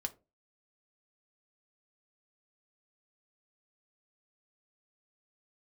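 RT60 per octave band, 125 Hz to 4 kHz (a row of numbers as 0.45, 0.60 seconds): 0.35, 0.35, 0.35, 0.25, 0.20, 0.15 seconds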